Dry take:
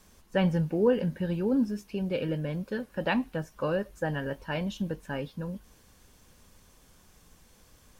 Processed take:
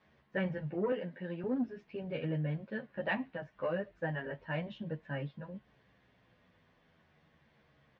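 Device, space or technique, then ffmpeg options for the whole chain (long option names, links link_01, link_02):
barber-pole flanger into a guitar amplifier: -filter_complex "[0:a]asplit=2[link_01][link_02];[link_02]adelay=10.5,afreqshift=-0.4[link_03];[link_01][link_03]amix=inputs=2:normalize=1,asoftclip=type=tanh:threshold=-20.5dB,highpass=95,equalizer=frequency=140:width_type=q:width=4:gain=7,equalizer=frequency=650:width_type=q:width=4:gain=6,equalizer=frequency=1900:width_type=q:width=4:gain=8,lowpass=frequency=3500:width=0.5412,lowpass=frequency=3500:width=1.3066,asettb=1/sr,asplit=3[link_04][link_05][link_06];[link_04]atrim=end=0.924[link_07];[link_05]atrim=start=0.92:end=1.44,asetpts=PTS-STARTPTS,afade=type=in:duration=0.004:curve=qsin,afade=type=out:start_time=0.516:duration=0.004:curve=qsin,highpass=260[link_08];[link_06]atrim=start=1.436[link_09];[link_07][link_08]acrossfade=duration=0.004:curve1=hsin:curve2=qsin[link_10];[link_10][link_09]acrossfade=duration=0.004:curve1=qsin:curve2=hsin,volume=-4.5dB"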